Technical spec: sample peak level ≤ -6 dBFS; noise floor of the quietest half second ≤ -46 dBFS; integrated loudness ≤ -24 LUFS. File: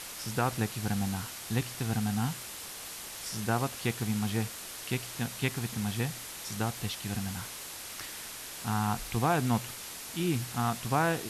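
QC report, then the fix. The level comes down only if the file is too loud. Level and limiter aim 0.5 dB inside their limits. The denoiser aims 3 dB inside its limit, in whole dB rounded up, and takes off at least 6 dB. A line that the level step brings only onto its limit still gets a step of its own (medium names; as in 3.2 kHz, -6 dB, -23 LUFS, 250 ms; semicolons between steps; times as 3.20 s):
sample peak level -13.5 dBFS: pass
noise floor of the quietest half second -43 dBFS: fail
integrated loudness -33.0 LUFS: pass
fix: noise reduction 6 dB, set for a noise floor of -43 dBFS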